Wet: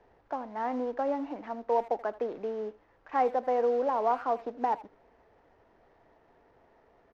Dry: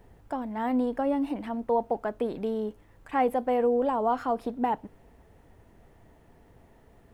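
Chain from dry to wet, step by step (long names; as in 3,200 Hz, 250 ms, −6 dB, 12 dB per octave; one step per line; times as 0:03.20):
variable-slope delta modulation 32 kbit/s
three-way crossover with the lows and the highs turned down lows −15 dB, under 350 Hz, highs −17 dB, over 2,100 Hz
far-end echo of a speakerphone 80 ms, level −18 dB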